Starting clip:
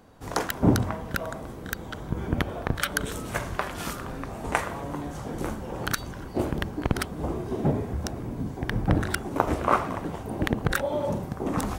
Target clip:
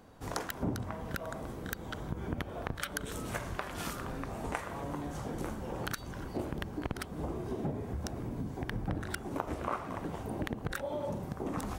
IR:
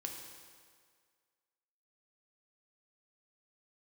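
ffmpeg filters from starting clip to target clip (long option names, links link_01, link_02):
-af "acompressor=threshold=-32dB:ratio=3,volume=-2.5dB"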